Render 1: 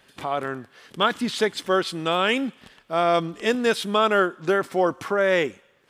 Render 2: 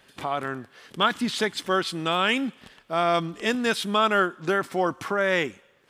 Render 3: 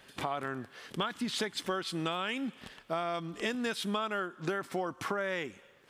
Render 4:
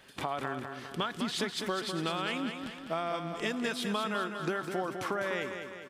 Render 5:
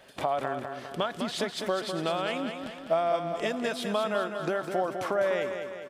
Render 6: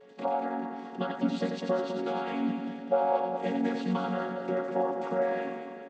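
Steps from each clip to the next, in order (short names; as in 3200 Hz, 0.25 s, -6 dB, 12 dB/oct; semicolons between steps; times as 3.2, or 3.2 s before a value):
dynamic EQ 480 Hz, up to -6 dB, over -33 dBFS, Q 1.6
compressor 10:1, threshold -30 dBFS, peak gain reduction 14.5 dB
feedback echo 0.202 s, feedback 54%, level -7 dB
bell 620 Hz +11.5 dB 0.64 oct
chord vocoder major triad, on F#3; whine 430 Hz -54 dBFS; echo 89 ms -5.5 dB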